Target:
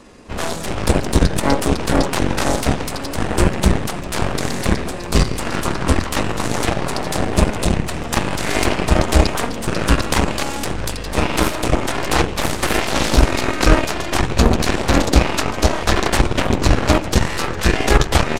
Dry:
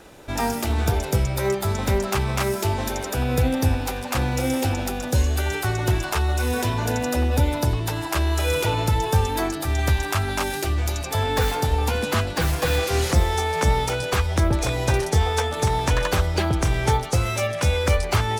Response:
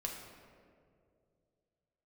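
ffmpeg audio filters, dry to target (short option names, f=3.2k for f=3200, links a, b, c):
-filter_complex "[0:a]asplit=2[a][b];[1:a]atrim=start_sample=2205,asetrate=27783,aresample=44100[c];[b][c]afir=irnorm=-1:irlink=0,volume=-6.5dB[d];[a][d]amix=inputs=2:normalize=0,aeval=exprs='0.668*(cos(1*acos(clip(val(0)/0.668,-1,1)))-cos(1*PI/2))+0.0944*(cos(2*acos(clip(val(0)/0.668,-1,1)))-cos(2*PI/2))+0.168*(cos(7*acos(clip(val(0)/0.668,-1,1)))-cos(7*PI/2))+0.0841*(cos(8*acos(clip(val(0)/0.668,-1,1)))-cos(8*PI/2))':c=same,asetrate=31183,aresample=44100,atempo=1.41421,volume=2dB"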